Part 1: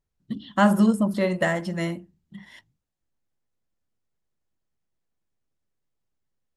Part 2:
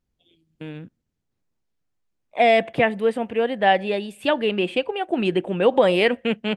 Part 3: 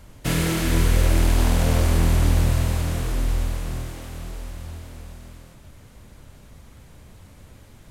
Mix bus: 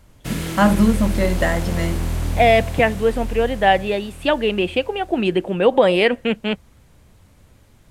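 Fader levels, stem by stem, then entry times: +3.0, +2.5, -4.5 dB; 0.00, 0.00, 0.00 s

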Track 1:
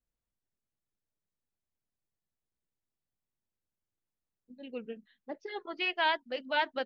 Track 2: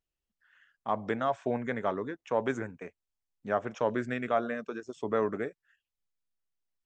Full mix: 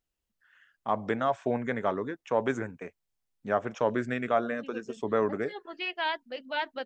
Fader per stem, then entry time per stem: -2.0, +2.0 dB; 0.00, 0.00 s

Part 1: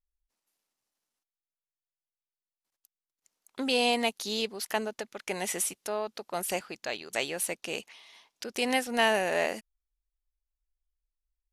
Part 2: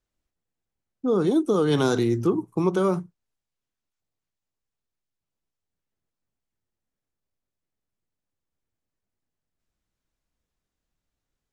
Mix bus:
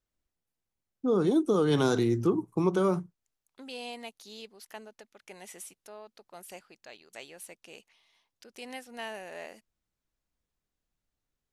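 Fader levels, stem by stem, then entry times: -14.5, -3.5 dB; 0.00, 0.00 s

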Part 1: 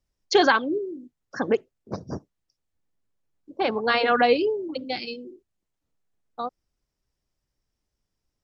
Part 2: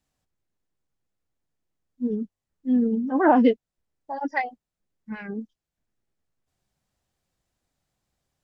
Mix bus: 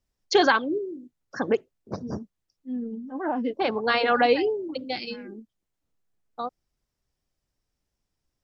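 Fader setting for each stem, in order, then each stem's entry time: -1.0, -10.5 dB; 0.00, 0.00 s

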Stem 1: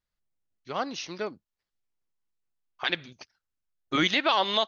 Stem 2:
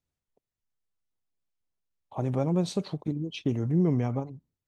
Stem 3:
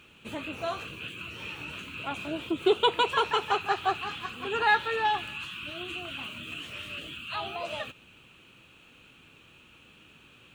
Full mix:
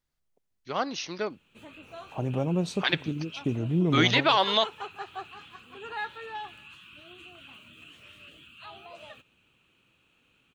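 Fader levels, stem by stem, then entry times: +1.5, -1.0, -11.5 dB; 0.00, 0.00, 1.30 s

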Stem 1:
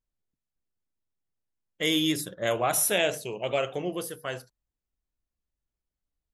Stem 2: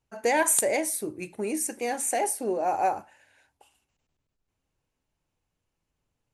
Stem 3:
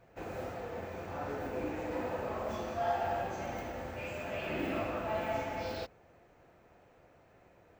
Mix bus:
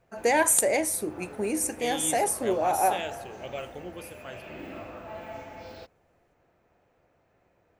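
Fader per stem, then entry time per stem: -9.5, +1.0, -5.5 dB; 0.00, 0.00, 0.00 s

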